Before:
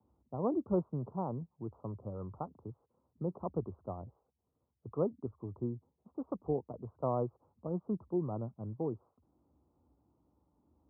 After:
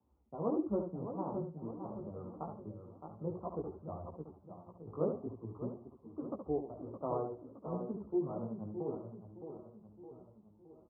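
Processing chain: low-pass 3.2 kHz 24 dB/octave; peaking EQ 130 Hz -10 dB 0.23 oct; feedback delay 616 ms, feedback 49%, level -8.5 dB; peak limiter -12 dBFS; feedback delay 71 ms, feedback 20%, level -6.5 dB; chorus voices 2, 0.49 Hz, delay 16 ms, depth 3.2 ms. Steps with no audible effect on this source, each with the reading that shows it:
low-pass 3.2 kHz: input has nothing above 1.3 kHz; peak limiter -12 dBFS: peak at its input -20.0 dBFS

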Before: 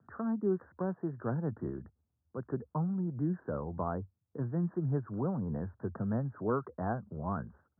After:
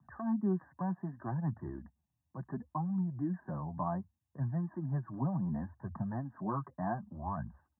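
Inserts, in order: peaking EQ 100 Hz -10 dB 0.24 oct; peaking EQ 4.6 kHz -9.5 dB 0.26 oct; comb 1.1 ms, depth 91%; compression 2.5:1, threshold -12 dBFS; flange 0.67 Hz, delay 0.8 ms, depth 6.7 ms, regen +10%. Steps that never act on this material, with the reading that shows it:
peaking EQ 4.6 kHz: input has nothing above 1.4 kHz; compression, threshold -12 dBFS: peak at its input -19.5 dBFS

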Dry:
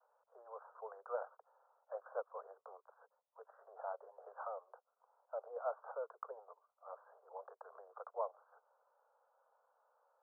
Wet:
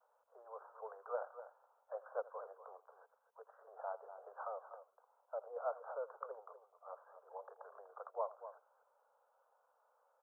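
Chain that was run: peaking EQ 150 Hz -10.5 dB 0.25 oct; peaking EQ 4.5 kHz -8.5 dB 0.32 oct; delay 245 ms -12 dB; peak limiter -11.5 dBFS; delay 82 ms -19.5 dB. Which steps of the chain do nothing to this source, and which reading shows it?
peaking EQ 150 Hz: input has nothing below 360 Hz; peaking EQ 4.5 kHz: input has nothing above 1.6 kHz; peak limiter -11.5 dBFS: peak at its input -26.0 dBFS

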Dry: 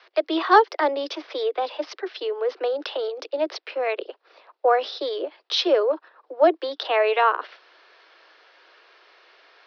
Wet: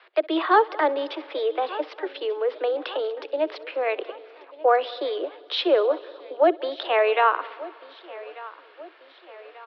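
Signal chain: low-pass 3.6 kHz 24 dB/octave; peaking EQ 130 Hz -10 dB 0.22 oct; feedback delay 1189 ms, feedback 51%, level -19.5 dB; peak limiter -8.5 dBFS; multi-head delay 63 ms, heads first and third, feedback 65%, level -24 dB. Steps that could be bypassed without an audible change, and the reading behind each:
peaking EQ 130 Hz: input has nothing below 250 Hz

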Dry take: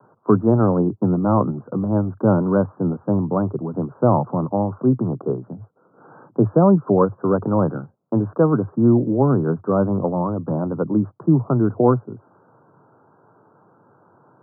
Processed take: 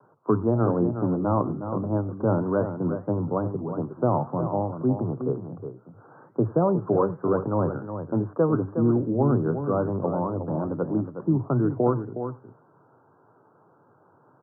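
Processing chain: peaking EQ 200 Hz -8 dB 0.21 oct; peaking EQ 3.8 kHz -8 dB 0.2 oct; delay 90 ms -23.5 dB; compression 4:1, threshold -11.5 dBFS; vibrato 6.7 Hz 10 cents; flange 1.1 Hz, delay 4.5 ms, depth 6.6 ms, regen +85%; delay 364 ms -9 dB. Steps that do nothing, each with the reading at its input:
peaking EQ 3.8 kHz: input has nothing above 1.4 kHz

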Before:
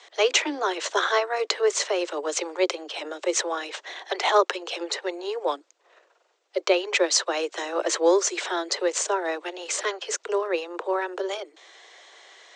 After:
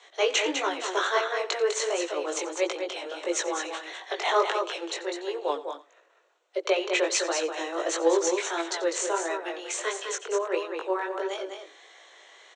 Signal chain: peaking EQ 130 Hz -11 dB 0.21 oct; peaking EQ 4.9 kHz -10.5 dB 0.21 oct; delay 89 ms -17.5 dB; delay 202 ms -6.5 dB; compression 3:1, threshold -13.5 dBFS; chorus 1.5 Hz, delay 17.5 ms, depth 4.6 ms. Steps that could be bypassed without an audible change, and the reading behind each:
peaking EQ 130 Hz: input has nothing below 270 Hz

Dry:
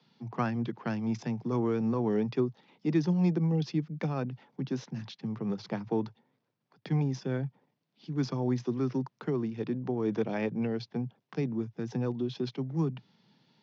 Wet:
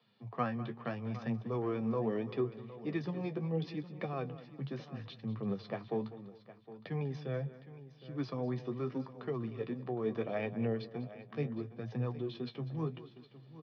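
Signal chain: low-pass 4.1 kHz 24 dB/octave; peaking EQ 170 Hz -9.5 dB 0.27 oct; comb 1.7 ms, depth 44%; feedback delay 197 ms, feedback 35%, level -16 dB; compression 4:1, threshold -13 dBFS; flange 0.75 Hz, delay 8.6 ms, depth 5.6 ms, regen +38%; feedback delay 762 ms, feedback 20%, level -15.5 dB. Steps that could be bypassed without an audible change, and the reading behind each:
compression, threshold -13 dBFS: peak at its input -16.0 dBFS

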